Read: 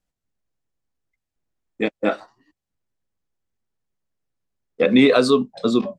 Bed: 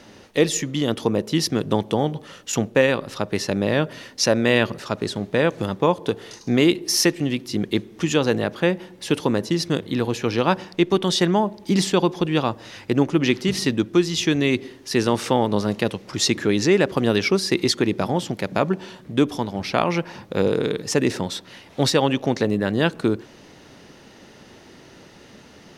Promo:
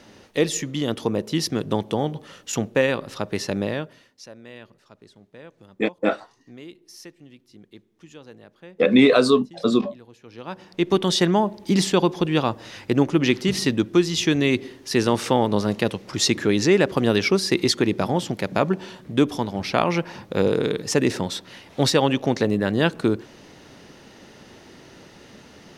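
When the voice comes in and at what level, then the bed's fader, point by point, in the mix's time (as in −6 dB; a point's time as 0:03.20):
4.00 s, −0.5 dB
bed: 0:03.62 −2.5 dB
0:04.27 −24.5 dB
0:10.22 −24.5 dB
0:10.91 0 dB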